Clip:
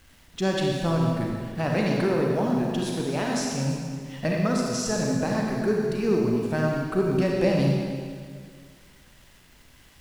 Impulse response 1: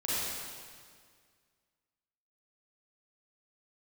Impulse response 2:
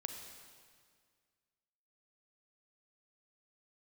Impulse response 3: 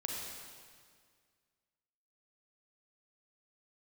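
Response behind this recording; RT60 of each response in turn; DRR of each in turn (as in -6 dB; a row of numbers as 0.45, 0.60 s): 3; 1.9, 1.9, 1.9 s; -9.5, 4.5, -1.5 dB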